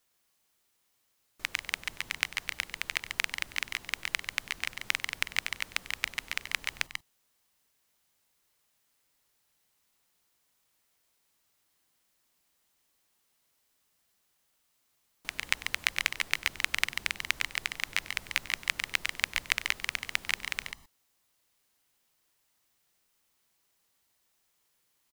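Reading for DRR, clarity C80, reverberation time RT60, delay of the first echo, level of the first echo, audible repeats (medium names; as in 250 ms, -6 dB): no reverb, no reverb, no reverb, 96 ms, -18.5 dB, 2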